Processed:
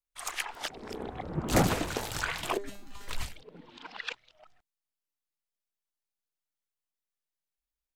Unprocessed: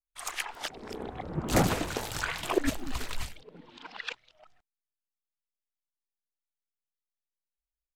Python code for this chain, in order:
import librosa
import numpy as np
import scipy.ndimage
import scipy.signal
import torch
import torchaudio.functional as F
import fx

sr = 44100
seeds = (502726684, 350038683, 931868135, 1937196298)

y = fx.comb_fb(x, sr, f0_hz=200.0, decay_s=0.4, harmonics='all', damping=0.0, mix_pct=90, at=(2.57, 3.08))